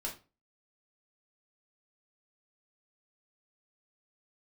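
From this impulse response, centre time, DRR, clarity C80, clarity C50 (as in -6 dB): 19 ms, -3.0 dB, 17.0 dB, 10.0 dB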